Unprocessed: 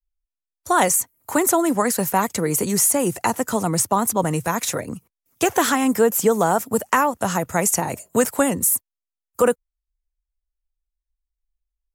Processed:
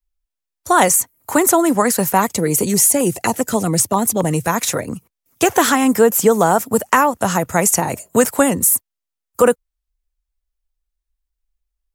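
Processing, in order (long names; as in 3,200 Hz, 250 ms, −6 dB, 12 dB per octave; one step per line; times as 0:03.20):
0:02.34–0:04.47: auto-filter notch saw down 7.5 Hz 800–1,900 Hz
level +4.5 dB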